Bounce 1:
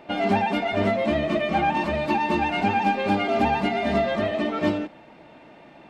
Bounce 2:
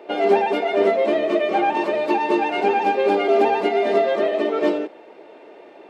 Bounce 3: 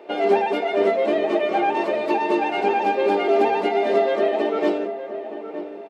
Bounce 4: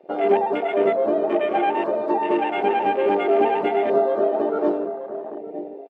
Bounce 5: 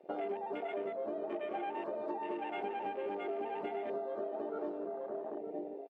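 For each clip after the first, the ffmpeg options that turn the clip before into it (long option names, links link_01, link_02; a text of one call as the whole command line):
ffmpeg -i in.wav -af "highpass=frequency=410:width_type=q:width=4.8" out.wav
ffmpeg -i in.wav -filter_complex "[0:a]asplit=2[link_01][link_02];[link_02]adelay=916,lowpass=frequency=1300:poles=1,volume=-10dB,asplit=2[link_03][link_04];[link_04]adelay=916,lowpass=frequency=1300:poles=1,volume=0.32,asplit=2[link_05][link_06];[link_06]adelay=916,lowpass=frequency=1300:poles=1,volume=0.32,asplit=2[link_07][link_08];[link_08]adelay=916,lowpass=frequency=1300:poles=1,volume=0.32[link_09];[link_01][link_03][link_05][link_07][link_09]amix=inputs=5:normalize=0,volume=-1.5dB" out.wav
ffmpeg -i in.wav -af "afwtdn=0.0355" out.wav
ffmpeg -i in.wav -af "acompressor=threshold=-27dB:ratio=12,volume=-8dB" out.wav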